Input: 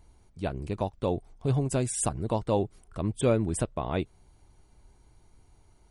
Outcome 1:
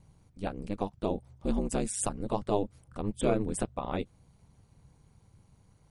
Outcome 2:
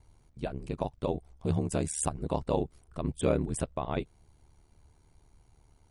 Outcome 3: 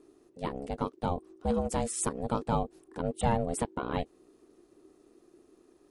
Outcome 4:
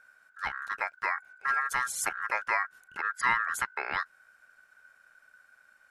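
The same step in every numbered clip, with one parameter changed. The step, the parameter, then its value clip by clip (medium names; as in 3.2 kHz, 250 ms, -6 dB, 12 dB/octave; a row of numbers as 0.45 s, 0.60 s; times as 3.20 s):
ring modulator, frequency: 100 Hz, 37 Hz, 350 Hz, 1.5 kHz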